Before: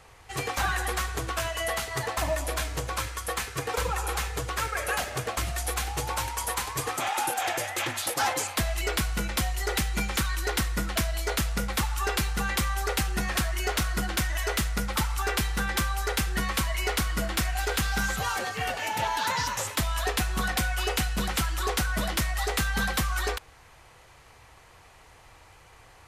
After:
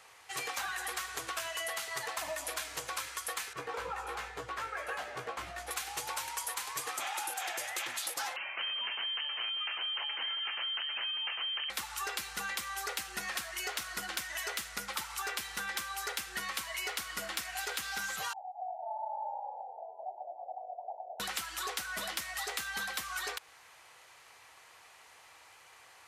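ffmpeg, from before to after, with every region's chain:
-filter_complex "[0:a]asettb=1/sr,asplit=3[s0][s1][s2];[s0]atrim=end=3.534[s3];[s1]atrim=start=3.53:end=5.71,asetpts=PTS-STARTPTS,afade=t=in:d=0.004:c=qsin,afade=t=out:st=2.176:d=0.004:c=qsin,lowpass=f=1000:p=1,asplit=2[s4][s5];[s5]adelay=17,volume=0.596[s6];[s4][s6]amix=inputs=2:normalize=0,atrim=end_sample=96138[s7];[s2]atrim=start=5.706[s8];[s3][s7]acrossfade=d=0.004:c1=hsin:c2=qsin[s9];[s9][s8]acrossfade=d=0.004:c1=qsin:c2=hsin,asettb=1/sr,asplit=3[s10][s11][s12];[s10]atrim=end=8.364[s13];[s11]atrim=start=8.36:end=11.7,asetpts=PTS-STARTPTS,afade=t=in:d=0.004:c=qsin,afade=t=out:st=3.336:d=0.004:c=qsin,aeval=exprs='(mod(11.9*val(0)+1,2)-1)/11.9':c=same,lowpass=f=2700:t=q:w=0.5098,lowpass=f=2700:t=q:w=0.6013,lowpass=f=2700:t=q:w=0.9,lowpass=f=2700:t=q:w=2.563,afreqshift=-3200[s14];[s12]atrim=start=11.696[s15];[s13][s14]acrossfade=d=0.004:c1=hsin:c2=qsin[s16];[s16][s15]acrossfade=d=0.004:c1=qsin:c2=hsin,asettb=1/sr,asplit=3[s17][s18][s19];[s17]atrim=end=18.334[s20];[s18]atrim=start=18.33:end=21.2,asetpts=PTS-STARTPTS,afade=t=in:d=0.004:c=qsin,afade=t=out:st=2.866:d=0.004:c=qsin,asuperpass=centerf=740:order=12:qfactor=2.7,asplit=8[s21][s22][s23][s24][s25][s26][s27][s28];[s22]adelay=213,afreqshift=-52,volume=0.668[s29];[s23]adelay=426,afreqshift=-104,volume=0.347[s30];[s24]adelay=639,afreqshift=-156,volume=0.18[s31];[s25]adelay=852,afreqshift=-208,volume=0.0944[s32];[s26]adelay=1065,afreqshift=-260,volume=0.049[s33];[s27]adelay=1278,afreqshift=-312,volume=0.0254[s34];[s28]adelay=1491,afreqshift=-364,volume=0.0132[s35];[s21][s29][s30][s31][s32][s33][s34][s35]amix=inputs=8:normalize=0,atrim=end_sample=126567[s36];[s19]atrim=start=21.196[s37];[s20][s36]acrossfade=d=0.004:c1=hsin:c2=qsin[s38];[s38][s37]acrossfade=d=0.004:c1=qsin:c2=hsin,highpass=f=1200:p=1,acompressor=threshold=0.02:ratio=6"

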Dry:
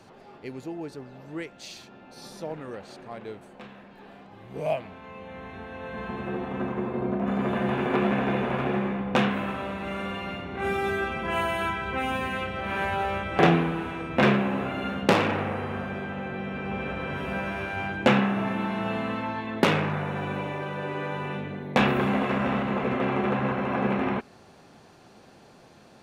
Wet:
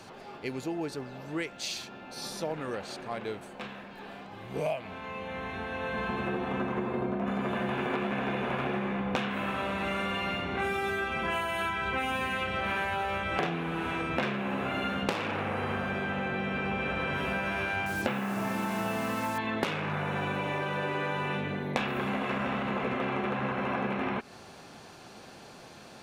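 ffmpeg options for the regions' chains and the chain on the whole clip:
-filter_complex "[0:a]asettb=1/sr,asplit=3[s0][s1][s2];[s0]atrim=end=17.864[s3];[s1]atrim=start=17.86:end=19.38,asetpts=PTS-STARTPTS,afade=t=in:d=0.004:c=qsin,afade=t=out:st=1.516:d=0.004:c=qsin,lowpass=f=2500:p=1,acrusher=bits=6:mix=0:aa=0.5[s4];[s2]atrim=start=19.376[s5];[s3][s4]acrossfade=d=0.004:c1=hsin:c2=qsin[s6];[s6][s5]acrossfade=d=0.004:c1=qsin:c2=hsin,tiltshelf=f=970:g=-3,bandreject=f=1900:w=28,acompressor=threshold=0.0251:ratio=10,volume=1.68"

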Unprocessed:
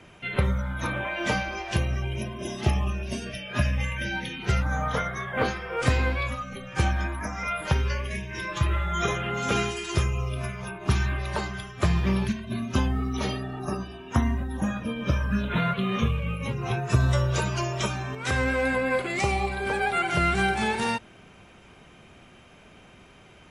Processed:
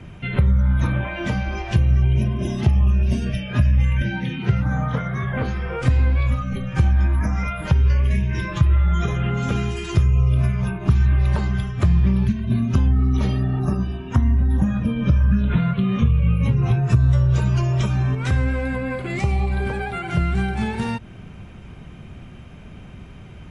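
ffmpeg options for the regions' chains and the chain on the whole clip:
-filter_complex "[0:a]asettb=1/sr,asplit=3[s0][s1][s2];[s0]atrim=end=4.024[s3];[s1]atrim=start=4.02:end=5.23,asetpts=PTS-STARTPTS,afade=t=in:d=0.004:c=qsin,afade=t=out:st=1.206:d=0.004:c=qsin,acrossover=split=3700[s4][s5];[s5]acompressor=threshold=0.00282:ratio=4:attack=1:release=60[s6];[s4][s6]amix=inputs=2:normalize=0,highpass=f=96:w=0.5412,highpass=f=96:w=1.3066[s7];[s2]atrim=start=5.226[s8];[s3][s7]acrossfade=d=0.004:c1=hsin:c2=qsin[s9];[s9][s8]acrossfade=d=0.004:c1=qsin:c2=hsin,acompressor=threshold=0.0355:ratio=6,bass=f=250:g=15,treble=f=4000:g=-4,volume=1.41"

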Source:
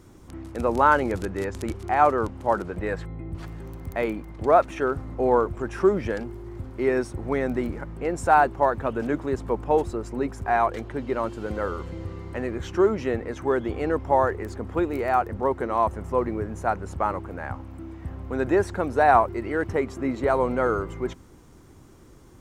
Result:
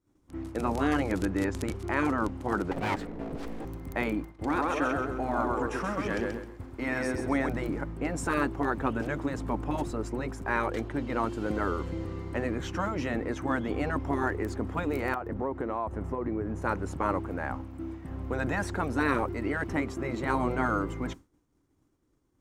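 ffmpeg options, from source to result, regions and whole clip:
-filter_complex "[0:a]asettb=1/sr,asplit=3[s0][s1][s2];[s0]atrim=end=2.714[s3];[s1]atrim=start=2.71:end=3.65,asetpts=PTS-STARTPTS,afade=t=in:d=0.004:c=qsin,afade=t=out:st=0.936:d=0.004:c=qsin,equalizer=f=390:w=2.5:g=10.5,aeval=exprs='abs(val(0))':c=same[s4];[s2]atrim=start=3.646[s5];[s3][s4]acrossfade=d=0.004:c1=hsin:c2=qsin[s6];[s6][s5]acrossfade=d=0.004:c1=qsin:c2=hsin,asettb=1/sr,asplit=3[s7][s8][s9];[s7]atrim=end=4.254[s10];[s8]atrim=start=4.25:end=7.49,asetpts=PTS-STARTPTS,afade=t=in:d=0.004:c=qsin,afade=t=out:st=3.236:d=0.004:c=qsin,lowshelf=f=320:g=-5.5,aecho=1:1:131|262|393|524|655:0.596|0.22|0.0815|0.0302|0.0112,atrim=end_sample=142884[s11];[s9]atrim=start=7.486[s12];[s10][s11]acrossfade=d=0.004:c1=hsin:c2=qsin[s13];[s13][s12]acrossfade=d=0.004:c1=qsin:c2=hsin,asettb=1/sr,asplit=3[s14][s15][s16];[s14]atrim=end=15.144[s17];[s15]atrim=start=15.14:end=16.62,asetpts=PTS-STARTPTS,afade=t=in:d=0.004:c=qsin,afade=t=out:st=1.476:d=0.004:c=qsin,highshelf=f=3100:g=-11,acompressor=threshold=0.0398:ratio=5:attack=3.2:release=140:knee=1:detection=peak[s18];[s16]atrim=start=16.616[s19];[s17][s18]acrossfade=d=0.004:c1=hsin:c2=qsin[s20];[s20][s19]acrossfade=d=0.004:c1=qsin:c2=hsin,afftfilt=real='re*lt(hypot(re,im),0.316)':imag='im*lt(hypot(re,im),0.316)':win_size=1024:overlap=0.75,equalizer=f=290:t=o:w=0.25:g=8,agate=range=0.0224:threshold=0.02:ratio=3:detection=peak"

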